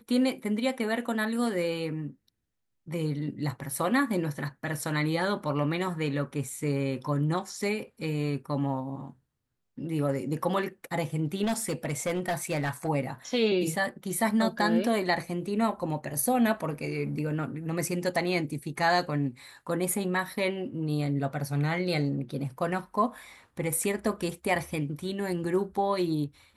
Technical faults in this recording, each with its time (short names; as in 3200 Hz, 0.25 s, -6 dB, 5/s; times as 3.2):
11.43–12.89 clipped -24 dBFS